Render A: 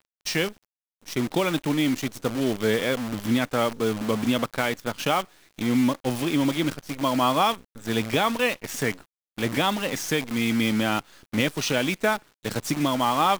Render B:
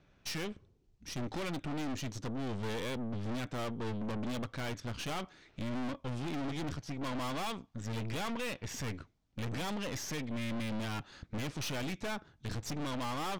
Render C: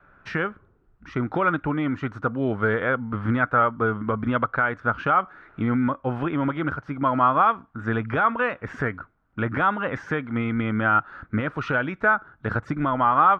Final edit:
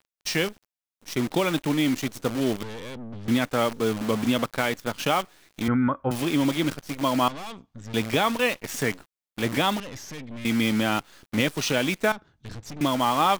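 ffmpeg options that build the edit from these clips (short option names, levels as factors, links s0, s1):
-filter_complex "[1:a]asplit=4[s0][s1][s2][s3];[0:a]asplit=6[s4][s5][s6][s7][s8][s9];[s4]atrim=end=2.632[s10];[s0]atrim=start=2.628:end=3.282[s11];[s5]atrim=start=3.278:end=5.682[s12];[2:a]atrim=start=5.678:end=6.112[s13];[s6]atrim=start=6.108:end=7.282[s14];[s1]atrim=start=7.278:end=7.942[s15];[s7]atrim=start=7.938:end=9.802[s16];[s2]atrim=start=9.798:end=10.452[s17];[s8]atrim=start=10.448:end=12.122[s18];[s3]atrim=start=12.118:end=12.812[s19];[s9]atrim=start=12.808[s20];[s10][s11]acrossfade=d=0.004:c1=hsin:c2=hsin[s21];[s21][s12]acrossfade=d=0.004:c1=hsin:c2=hsin[s22];[s22][s13]acrossfade=d=0.004:c1=hsin:c2=hsin[s23];[s23][s14]acrossfade=d=0.004:c1=hsin:c2=hsin[s24];[s24][s15]acrossfade=d=0.004:c1=hsin:c2=hsin[s25];[s25][s16]acrossfade=d=0.004:c1=hsin:c2=hsin[s26];[s26][s17]acrossfade=d=0.004:c1=hsin:c2=hsin[s27];[s27][s18]acrossfade=d=0.004:c1=hsin:c2=hsin[s28];[s28][s19]acrossfade=d=0.004:c1=hsin:c2=hsin[s29];[s29][s20]acrossfade=d=0.004:c1=hsin:c2=hsin"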